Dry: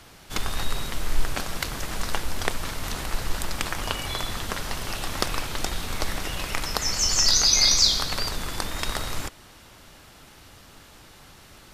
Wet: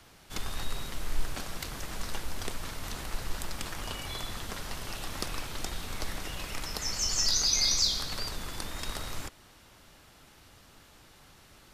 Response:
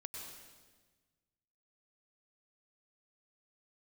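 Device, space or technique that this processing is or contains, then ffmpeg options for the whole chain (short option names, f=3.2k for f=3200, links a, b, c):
one-band saturation: -filter_complex "[0:a]acrossover=split=390|3600[a][b][c];[b]asoftclip=type=tanh:threshold=-25.5dB[d];[a][d][c]amix=inputs=3:normalize=0,volume=-7dB"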